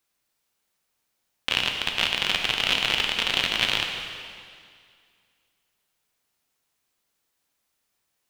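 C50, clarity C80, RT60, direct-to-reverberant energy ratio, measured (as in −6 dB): 4.0 dB, 5.0 dB, 2.1 s, 2.5 dB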